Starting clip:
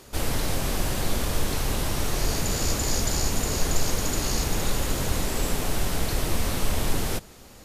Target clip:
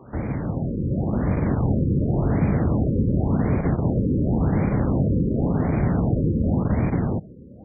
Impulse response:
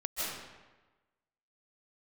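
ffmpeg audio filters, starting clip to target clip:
-filter_complex "[0:a]asoftclip=type=tanh:threshold=-16.5dB,highpass=120,asplit=2[link_01][link_02];[link_02]acrusher=bits=5:mix=0:aa=0.000001,volume=-7dB[link_03];[link_01][link_03]amix=inputs=2:normalize=0,acrossover=split=600|2400[link_04][link_05][link_06];[link_04]acompressor=threshold=-34dB:ratio=4[link_07];[link_05]acompressor=threshold=-49dB:ratio=4[link_08];[link_06]acompressor=threshold=-37dB:ratio=4[link_09];[link_07][link_08][link_09]amix=inputs=3:normalize=0,tiltshelf=frequency=800:gain=6,dynaudnorm=framelen=410:gausssize=5:maxgain=6dB,equalizer=frequency=420:width_type=o:width=1.1:gain=-7,afftfilt=real='re*lt(b*sr/1024,530*pow(2500/530,0.5+0.5*sin(2*PI*0.91*pts/sr)))':imag='im*lt(b*sr/1024,530*pow(2500/530,0.5+0.5*sin(2*PI*0.91*pts/sr)))':win_size=1024:overlap=0.75,volume=7dB"

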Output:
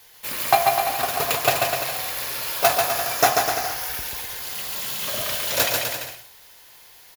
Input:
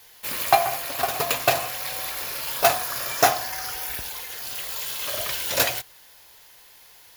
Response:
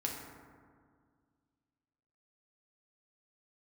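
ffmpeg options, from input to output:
-filter_complex "[0:a]asettb=1/sr,asplit=3[link_01][link_02][link_03];[link_01]atrim=end=4.554[link_04];[link_02]atrim=start=4.55:end=5.24,asetpts=PTS-STARTPTS,afade=type=in:duration=0.004:curve=qsin,afade=type=out:start_time=0.686:duration=0.004:curve=qsin,equalizer=frequency=190:width=2:gain=14[link_05];[link_03]atrim=start=5.236[link_06];[link_04][link_05]acrossfade=duration=0.004:curve1=hsin:curve2=qsin[link_07];[link_07][link_06]acrossfade=duration=0.004:curve1=qsin:curve2=hsin,aecho=1:1:140|252|341.6|413.3|470.6:0.631|0.398|0.251|0.158|0.1"

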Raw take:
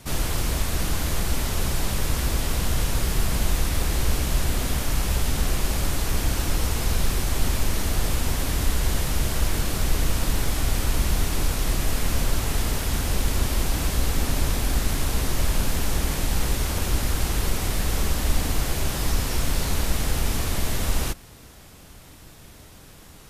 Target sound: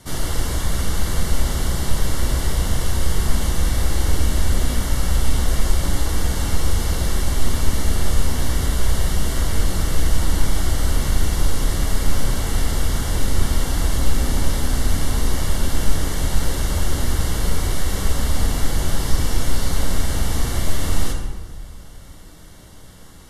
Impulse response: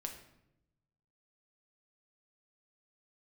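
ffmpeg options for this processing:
-filter_complex "[0:a]asuperstop=centerf=2500:order=8:qfactor=7.1[link_01];[1:a]atrim=start_sample=2205,asetrate=24255,aresample=44100[link_02];[link_01][link_02]afir=irnorm=-1:irlink=0"

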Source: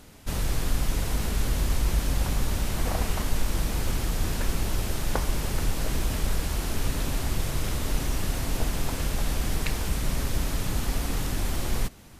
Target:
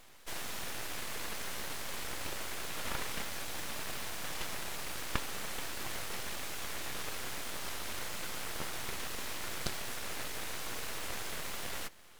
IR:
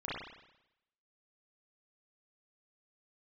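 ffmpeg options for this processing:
-af "highpass=frequency=160:width=0.5412,highpass=frequency=160:width=1.3066,equalizer=frequency=1700:width_type=o:width=1.2:gain=8,aeval=exprs='abs(val(0))':channel_layout=same,volume=-5dB"

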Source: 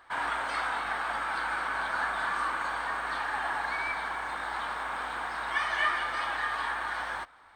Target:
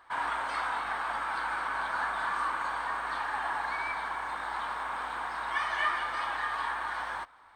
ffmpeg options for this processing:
ffmpeg -i in.wav -af "equalizer=frequency=1000:width_type=o:width=0.5:gain=5,volume=-3dB" out.wav

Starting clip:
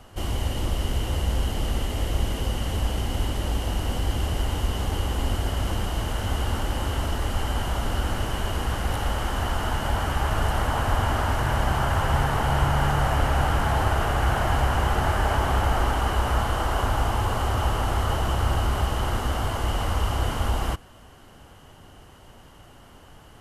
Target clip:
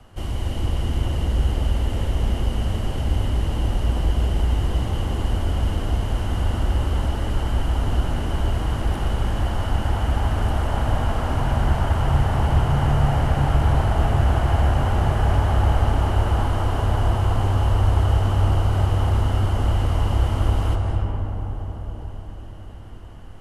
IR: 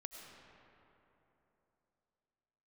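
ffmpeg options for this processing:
-filter_complex "[0:a]bass=frequency=250:gain=4,treble=frequency=4000:gain=-4,acrossover=split=270|1100|1800[link_01][link_02][link_03][link_04];[link_03]acompressor=threshold=-46dB:ratio=6[link_05];[link_01][link_02][link_05][link_04]amix=inputs=4:normalize=0[link_06];[1:a]atrim=start_sample=2205,asetrate=22932,aresample=44100[link_07];[link_06][link_07]afir=irnorm=-1:irlink=0"

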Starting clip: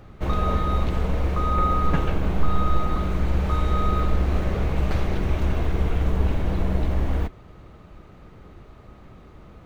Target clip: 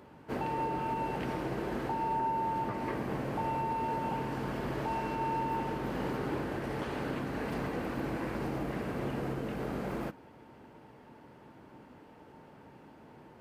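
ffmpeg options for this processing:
ffmpeg -i in.wav -af "highpass=270,alimiter=limit=-22.5dB:level=0:latency=1:release=171,asetrate=31752,aresample=44100,volume=-2dB" out.wav

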